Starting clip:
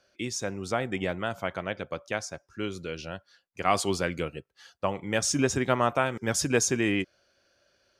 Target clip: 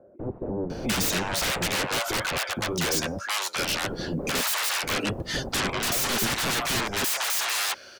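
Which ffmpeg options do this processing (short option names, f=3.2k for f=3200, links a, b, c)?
-filter_complex "[0:a]highpass=f=270:p=1,asoftclip=type=tanh:threshold=-25dB,asplit=3[a][b][c];[a]afade=t=out:st=4.33:d=0.02[d];[b]afreqshift=110,afade=t=in:st=4.33:d=0.02,afade=t=out:st=5.08:d=0.02[e];[c]afade=t=in:st=5.08:d=0.02[f];[d][e][f]amix=inputs=3:normalize=0,aeval=exprs='0.0891*sin(PI/2*10*val(0)/0.0891)':c=same,acrossover=split=650[g][h];[h]adelay=700[i];[g][i]amix=inputs=2:normalize=0,volume=-1.5dB"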